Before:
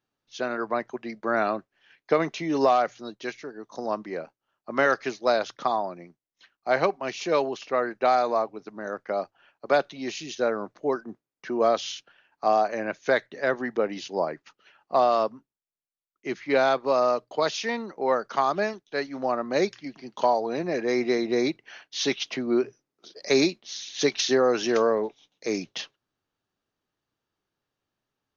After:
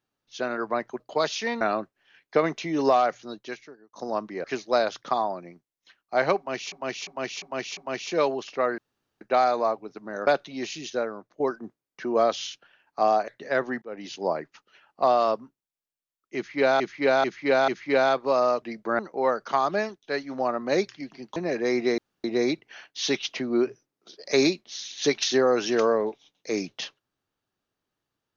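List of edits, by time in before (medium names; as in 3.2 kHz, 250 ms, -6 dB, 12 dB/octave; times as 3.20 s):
1.00–1.37 s: swap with 17.22–17.83 s
3.10–3.69 s: fade out
4.20–4.98 s: delete
6.91–7.26 s: loop, 5 plays
7.92 s: insert room tone 0.43 s
8.98–9.72 s: delete
10.33–10.85 s: fade out quadratic, to -10 dB
12.73–13.20 s: delete
13.74–14.07 s: fade in linear
16.28–16.72 s: loop, 4 plays
20.20–20.59 s: delete
21.21 s: insert room tone 0.26 s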